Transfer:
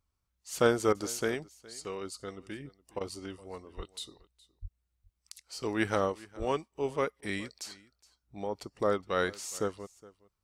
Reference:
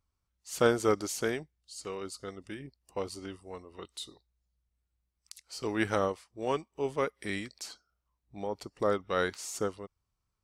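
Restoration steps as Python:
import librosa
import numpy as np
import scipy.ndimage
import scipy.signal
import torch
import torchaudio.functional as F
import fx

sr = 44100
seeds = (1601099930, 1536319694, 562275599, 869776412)

y = fx.highpass(x, sr, hz=140.0, slope=24, at=(3.76, 3.88), fade=0.02)
y = fx.highpass(y, sr, hz=140.0, slope=24, at=(4.61, 4.73), fade=0.02)
y = fx.highpass(y, sr, hz=140.0, slope=24, at=(6.38, 6.5), fade=0.02)
y = fx.fix_interpolate(y, sr, at_s=(0.93, 2.99, 7.21), length_ms=16.0)
y = fx.fix_echo_inverse(y, sr, delay_ms=416, level_db=-21.5)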